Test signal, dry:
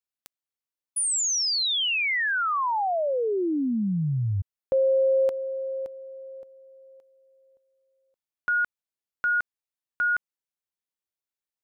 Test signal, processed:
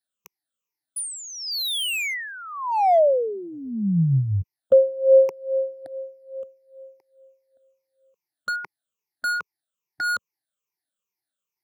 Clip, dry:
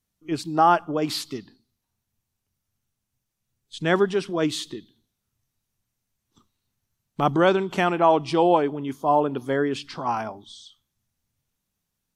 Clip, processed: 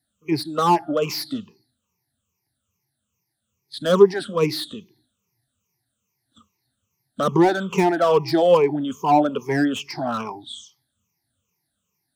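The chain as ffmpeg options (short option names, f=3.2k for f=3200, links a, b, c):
-filter_complex "[0:a]afftfilt=real='re*pow(10,23/40*sin(2*PI*(0.78*log(max(b,1)*sr/1024/100)/log(2)-(-2.4)*(pts-256)/sr)))':imag='im*pow(10,23/40*sin(2*PI*(0.78*log(max(b,1)*sr/1024/100)/log(2)-(-2.4)*(pts-256)/sr)))':win_size=1024:overlap=0.75,highpass=87,acrossover=split=480|800[a][b][c];[c]volume=24.5dB,asoftclip=hard,volume=-24.5dB[d];[a][b][d]amix=inputs=3:normalize=0,volume=-1dB"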